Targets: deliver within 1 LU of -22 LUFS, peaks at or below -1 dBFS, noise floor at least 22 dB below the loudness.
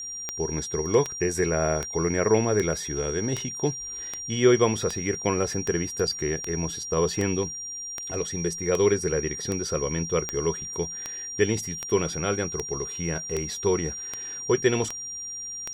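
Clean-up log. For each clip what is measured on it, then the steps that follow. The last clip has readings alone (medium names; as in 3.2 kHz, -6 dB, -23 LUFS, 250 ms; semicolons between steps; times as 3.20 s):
clicks found 21; steady tone 5.7 kHz; tone level -33 dBFS; loudness -26.5 LUFS; peak level -7.0 dBFS; loudness target -22.0 LUFS
-> de-click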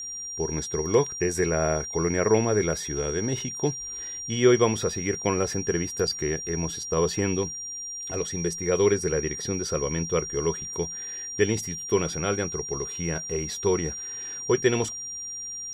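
clicks found 0; steady tone 5.7 kHz; tone level -33 dBFS
-> band-stop 5.7 kHz, Q 30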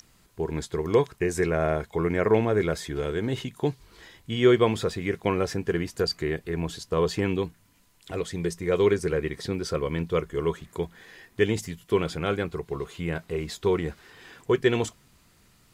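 steady tone not found; loudness -27.0 LUFS; peak level -7.0 dBFS; loudness target -22.0 LUFS
-> trim +5 dB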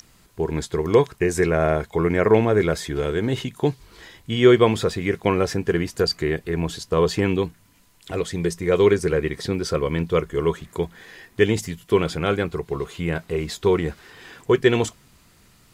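loudness -22.0 LUFS; peak level -2.0 dBFS; noise floor -55 dBFS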